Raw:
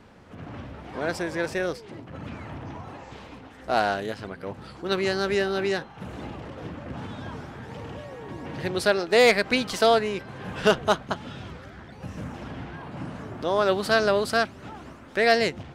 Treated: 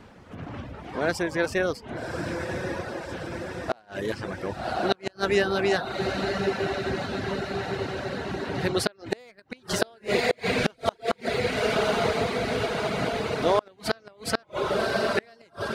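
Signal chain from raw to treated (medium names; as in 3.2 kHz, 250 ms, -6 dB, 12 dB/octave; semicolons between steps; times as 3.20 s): echo that smears into a reverb 1117 ms, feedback 69%, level -5 dB; reverb removal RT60 0.58 s; inverted gate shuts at -13 dBFS, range -35 dB; trim +3 dB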